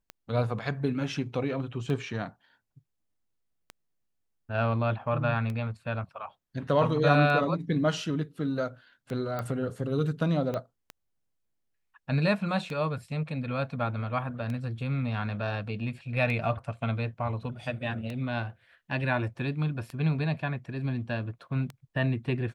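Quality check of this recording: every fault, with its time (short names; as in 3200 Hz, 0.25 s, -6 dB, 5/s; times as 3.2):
tick 33 1/3 rpm -23 dBFS
9.39 pop -20 dBFS
10.54 pop -20 dBFS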